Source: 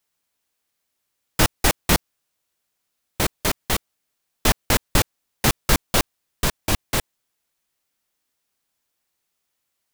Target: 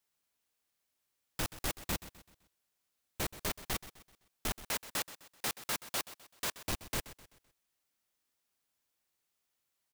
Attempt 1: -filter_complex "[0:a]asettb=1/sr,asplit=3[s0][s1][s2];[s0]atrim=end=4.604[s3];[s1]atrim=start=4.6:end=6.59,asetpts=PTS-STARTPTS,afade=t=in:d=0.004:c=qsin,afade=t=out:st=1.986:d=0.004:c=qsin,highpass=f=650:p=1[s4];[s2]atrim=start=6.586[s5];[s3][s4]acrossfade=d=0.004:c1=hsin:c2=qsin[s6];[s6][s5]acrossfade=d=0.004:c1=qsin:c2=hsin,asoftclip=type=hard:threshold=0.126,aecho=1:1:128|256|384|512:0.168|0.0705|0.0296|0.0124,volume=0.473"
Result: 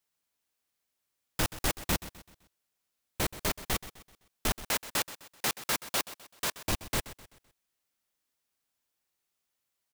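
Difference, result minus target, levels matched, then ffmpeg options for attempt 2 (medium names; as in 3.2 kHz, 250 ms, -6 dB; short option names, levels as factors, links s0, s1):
hard clipper: distortion -4 dB
-filter_complex "[0:a]asettb=1/sr,asplit=3[s0][s1][s2];[s0]atrim=end=4.604[s3];[s1]atrim=start=4.6:end=6.59,asetpts=PTS-STARTPTS,afade=t=in:d=0.004:c=qsin,afade=t=out:st=1.986:d=0.004:c=qsin,highpass=f=650:p=1[s4];[s2]atrim=start=6.586[s5];[s3][s4]acrossfade=d=0.004:c1=hsin:c2=qsin[s6];[s6][s5]acrossfade=d=0.004:c1=qsin:c2=hsin,asoftclip=type=hard:threshold=0.0531,aecho=1:1:128|256|384|512:0.168|0.0705|0.0296|0.0124,volume=0.473"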